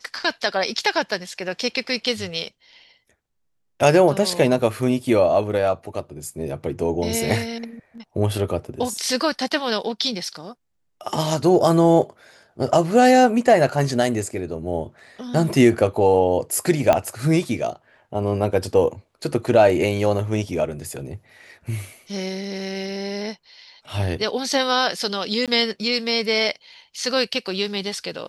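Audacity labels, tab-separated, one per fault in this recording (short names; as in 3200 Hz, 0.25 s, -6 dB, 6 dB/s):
16.930000	16.930000	pop -5 dBFS
25.460000	25.480000	gap 17 ms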